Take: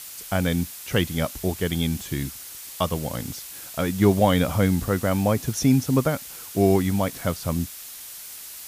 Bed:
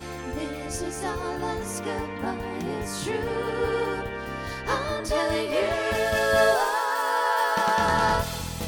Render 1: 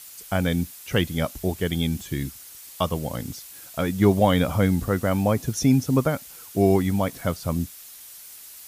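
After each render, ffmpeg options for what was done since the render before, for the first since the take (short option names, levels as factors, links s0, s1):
-af "afftdn=nr=6:nf=-40"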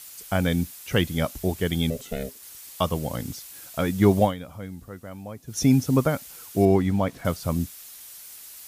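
-filter_complex "[0:a]asettb=1/sr,asplit=3[s0][s1][s2];[s0]atrim=end=1.904[s3];[s1]atrim=start=1.9:end=2.43,asetpts=PTS-STARTPTS,afade=t=in:d=0.004:c=qsin,afade=t=out:st=0.526:d=0.004:c=qsin,aeval=exprs='val(0)*sin(2*PI*330*n/s)':c=same[s4];[s2]atrim=start=2.426[s5];[s3][s4]acrossfade=d=0.004:c1=hsin:c2=qsin[s6];[s6][s5]acrossfade=d=0.004:c1=qsin:c2=hsin,asettb=1/sr,asplit=3[s7][s8][s9];[s7]atrim=end=6.654[s10];[s8]atrim=start=6.65:end=7.25,asetpts=PTS-STARTPTS,afade=t=in:d=0.004:c=qsin,afade=t=out:st=0.596:d=0.004:c=qsin,lowpass=f=2900:p=1[s11];[s9]atrim=start=7.246[s12];[s10][s11]acrossfade=d=0.004:c1=hsin:c2=qsin[s13];[s13][s12]acrossfade=d=0.004:c1=qsin:c2=hsin,asplit=3[s14][s15][s16];[s14]atrim=end=4.38,asetpts=PTS-STARTPTS,afade=t=out:st=4.23:d=0.15:c=qua:silence=0.149624[s17];[s15]atrim=start=4.38:end=5.44,asetpts=PTS-STARTPTS,volume=0.15[s18];[s16]atrim=start=5.44,asetpts=PTS-STARTPTS,afade=t=in:d=0.15:c=qua:silence=0.149624[s19];[s17][s18][s19]concat=n=3:v=0:a=1"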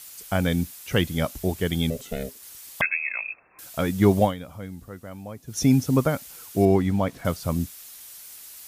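-filter_complex "[0:a]asettb=1/sr,asplit=3[s0][s1][s2];[s0]atrim=end=2.814[s3];[s1]atrim=start=2.81:end=3.59,asetpts=PTS-STARTPTS,afade=t=in:d=0.004:c=qsin,afade=t=out:st=0.776:d=0.004:c=qsin,lowpass=f=2300:t=q:w=0.5098,lowpass=f=2300:t=q:w=0.6013,lowpass=f=2300:t=q:w=0.9,lowpass=f=2300:t=q:w=2.563,afreqshift=-2700[s4];[s2]atrim=start=3.586[s5];[s3][s4]acrossfade=d=0.004:c1=hsin:c2=qsin[s6];[s6][s5]acrossfade=d=0.004:c1=qsin:c2=hsin"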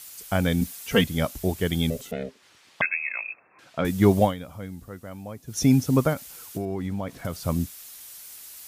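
-filter_complex "[0:a]asettb=1/sr,asplit=3[s0][s1][s2];[s0]atrim=end=0.614[s3];[s1]atrim=start=0.61:end=1.04,asetpts=PTS-STARTPTS,afade=t=in:d=0.004:c=qsin,afade=t=out:st=0.426:d=0.004:c=qsin,aecho=1:1:4.4:0.86,atrim=end_sample=18963[s4];[s2]atrim=start=1.036[s5];[s3][s4]acrossfade=d=0.004:c1=hsin:c2=qsin[s6];[s6][s5]acrossfade=d=0.004:c1=qsin:c2=hsin,asettb=1/sr,asplit=3[s7][s8][s9];[s7]atrim=end=2.114[s10];[s8]atrim=start=2.11:end=3.85,asetpts=PTS-STARTPTS,afade=t=in:d=0.004:c=qsin,afade=t=out:st=1.736:d=0.004:c=qsin,highpass=120,lowpass=3100[s11];[s9]atrim=start=3.846[s12];[s10][s11]acrossfade=d=0.004:c1=hsin:c2=qsin[s13];[s13][s12]acrossfade=d=0.004:c1=qsin:c2=hsin,asettb=1/sr,asplit=3[s14][s15][s16];[s14]atrim=end=6.134[s17];[s15]atrim=start=6.13:end=7.4,asetpts=PTS-STARTPTS,afade=t=in:d=0.004:c=qsin,afade=t=out:st=1.266:d=0.004:c=qsin,acompressor=threshold=0.0562:ratio=12:attack=3.2:release=140:knee=1:detection=peak[s18];[s16]atrim=start=7.396[s19];[s17][s18]acrossfade=d=0.004:c1=hsin:c2=qsin[s20];[s20][s19]acrossfade=d=0.004:c1=qsin:c2=hsin"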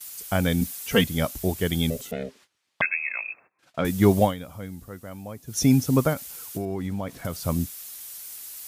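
-af "agate=range=0.0891:threshold=0.00282:ratio=16:detection=peak,highshelf=f=6600:g=5"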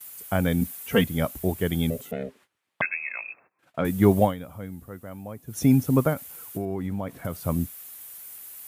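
-af "highpass=60,equalizer=f=5300:t=o:w=1.5:g=-11"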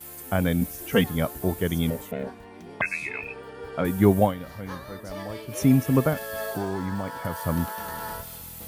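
-filter_complex "[1:a]volume=0.224[s0];[0:a][s0]amix=inputs=2:normalize=0"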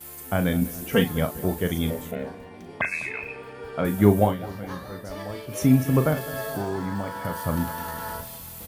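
-filter_complex "[0:a]asplit=2[s0][s1];[s1]adelay=39,volume=0.355[s2];[s0][s2]amix=inputs=2:normalize=0,asplit=2[s3][s4];[s4]adelay=205,lowpass=f=2000:p=1,volume=0.15,asplit=2[s5][s6];[s6]adelay=205,lowpass=f=2000:p=1,volume=0.55,asplit=2[s7][s8];[s8]adelay=205,lowpass=f=2000:p=1,volume=0.55,asplit=2[s9][s10];[s10]adelay=205,lowpass=f=2000:p=1,volume=0.55,asplit=2[s11][s12];[s12]adelay=205,lowpass=f=2000:p=1,volume=0.55[s13];[s3][s5][s7][s9][s11][s13]amix=inputs=6:normalize=0"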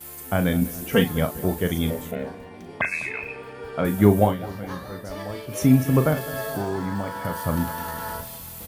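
-af "volume=1.19,alimiter=limit=0.708:level=0:latency=1"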